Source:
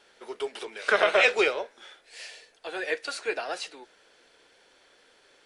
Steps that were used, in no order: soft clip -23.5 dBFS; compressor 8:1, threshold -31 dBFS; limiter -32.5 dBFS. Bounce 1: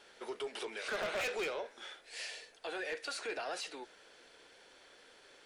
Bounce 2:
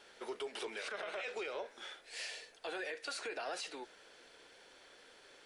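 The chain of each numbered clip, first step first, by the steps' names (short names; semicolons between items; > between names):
soft clip > compressor > limiter; compressor > limiter > soft clip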